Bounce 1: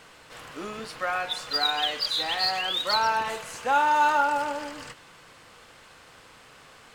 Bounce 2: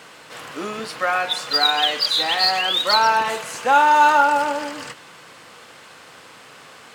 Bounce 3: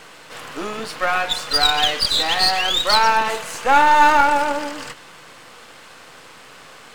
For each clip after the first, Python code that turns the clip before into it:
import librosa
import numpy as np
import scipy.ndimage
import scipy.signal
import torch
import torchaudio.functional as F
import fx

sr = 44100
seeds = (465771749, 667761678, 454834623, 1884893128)

y1 = scipy.signal.sosfilt(scipy.signal.butter(2, 140.0, 'highpass', fs=sr, output='sos'), x)
y1 = y1 * 10.0 ** (7.5 / 20.0)
y2 = np.where(y1 < 0.0, 10.0 ** (-7.0 / 20.0) * y1, y1)
y2 = y2 * 10.0 ** (3.5 / 20.0)